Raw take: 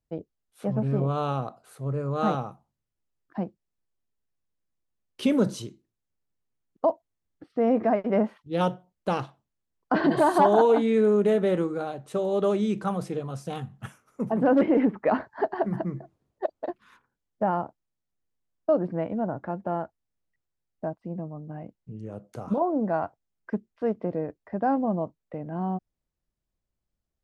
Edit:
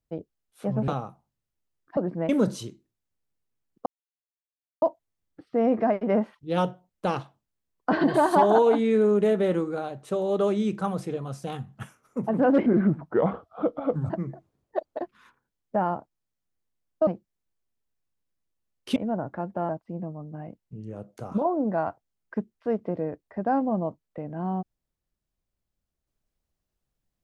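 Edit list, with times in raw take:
0.88–2.3 cut
3.39–5.28 swap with 18.74–19.06
6.85 insert silence 0.96 s
14.69–15.77 speed 75%
19.79–20.85 cut

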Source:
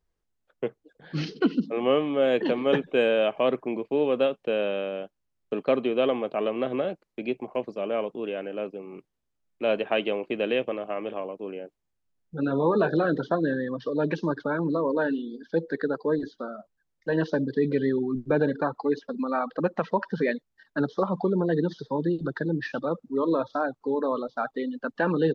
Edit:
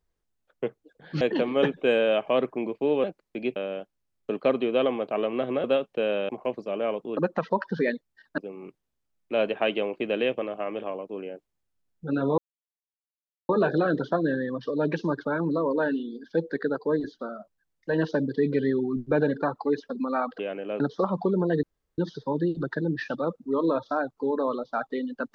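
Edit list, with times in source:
1.21–2.31 cut
4.14–4.79 swap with 6.87–7.39
8.27–8.68 swap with 19.58–20.79
12.68 insert silence 1.11 s
21.62 insert room tone 0.35 s

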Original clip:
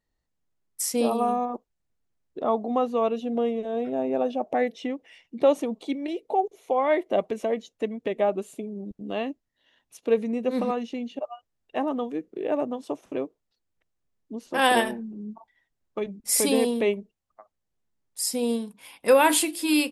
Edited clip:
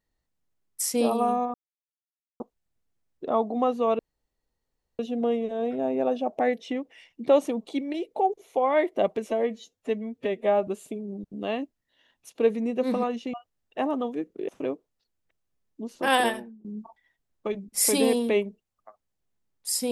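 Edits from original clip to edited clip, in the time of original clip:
1.54 insert silence 0.86 s
3.13 insert room tone 1.00 s
7.42–8.35 stretch 1.5×
11.01–11.31 cut
12.46–13 cut
14.57–15.16 fade out, to -20 dB

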